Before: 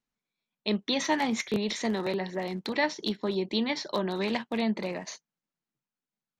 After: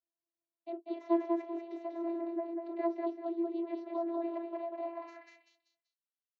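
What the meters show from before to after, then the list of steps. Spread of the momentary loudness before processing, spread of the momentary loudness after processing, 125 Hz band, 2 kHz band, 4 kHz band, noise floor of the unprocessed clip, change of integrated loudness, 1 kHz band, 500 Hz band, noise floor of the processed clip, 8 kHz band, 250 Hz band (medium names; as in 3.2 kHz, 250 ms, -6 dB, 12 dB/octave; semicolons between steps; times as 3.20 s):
7 LU, 12 LU, under -40 dB, -22.5 dB, under -30 dB, under -85 dBFS, -7.0 dB, -6.5 dB, -5.0 dB, under -85 dBFS, under -35 dB, -5.5 dB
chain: feedback delay 193 ms, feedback 31%, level -3.5 dB; vocoder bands 32, saw 337 Hz; band-pass sweep 510 Hz -> 3.8 kHz, 4.70–5.59 s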